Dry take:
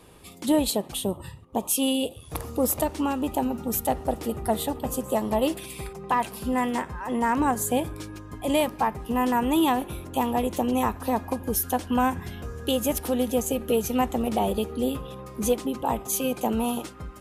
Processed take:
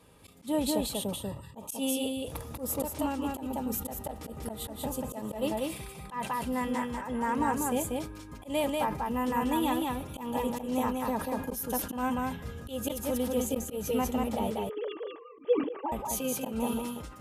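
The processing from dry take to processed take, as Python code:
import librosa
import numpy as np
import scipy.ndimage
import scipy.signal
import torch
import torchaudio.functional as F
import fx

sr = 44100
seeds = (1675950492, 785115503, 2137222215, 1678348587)

y = fx.sine_speech(x, sr, at=(14.5, 15.92))
y = fx.notch_comb(y, sr, f0_hz=360.0)
y = y + 10.0 ** (-3.0 / 20.0) * np.pad(y, (int(190 * sr / 1000.0), 0))[:len(y)]
y = fx.auto_swell(y, sr, attack_ms=132.0)
y = fx.sustainer(y, sr, db_per_s=96.0)
y = y * librosa.db_to_amplitude(-6.0)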